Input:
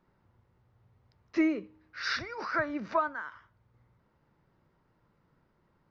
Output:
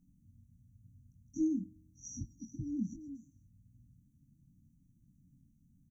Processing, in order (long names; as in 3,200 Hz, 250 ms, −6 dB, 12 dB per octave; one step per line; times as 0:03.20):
linear-phase brick-wall band-stop 300–5,700 Hz
double-tracking delay 22 ms −6 dB
level +5 dB